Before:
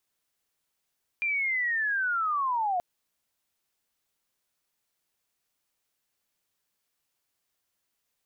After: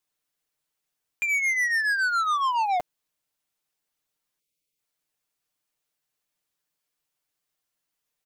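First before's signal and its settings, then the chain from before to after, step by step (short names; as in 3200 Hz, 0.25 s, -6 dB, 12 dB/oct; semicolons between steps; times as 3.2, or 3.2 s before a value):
chirp linear 2400 Hz -> 690 Hz -25 dBFS -> -24.5 dBFS 1.58 s
spectral delete 4.4–4.79, 590–2000 Hz; comb 6.6 ms, depth 56%; sample leveller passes 2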